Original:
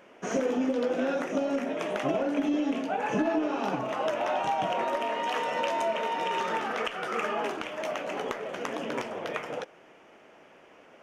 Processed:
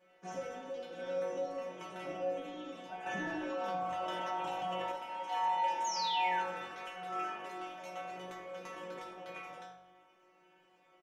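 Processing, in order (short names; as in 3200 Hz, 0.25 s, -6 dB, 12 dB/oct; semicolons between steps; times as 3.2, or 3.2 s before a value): 5.84–6.43 painted sound fall 1300–6900 Hz -28 dBFS; metallic resonator 180 Hz, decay 0.63 s, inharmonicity 0.002; on a send: frequency-shifting echo 82 ms, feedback 35%, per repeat -48 Hz, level -16.5 dB; on the sum: FDN reverb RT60 0.44 s, low-frequency decay 1×, high-frequency decay 0.85×, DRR 6 dB; 3.06–4.92 fast leveller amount 70%; gain +3.5 dB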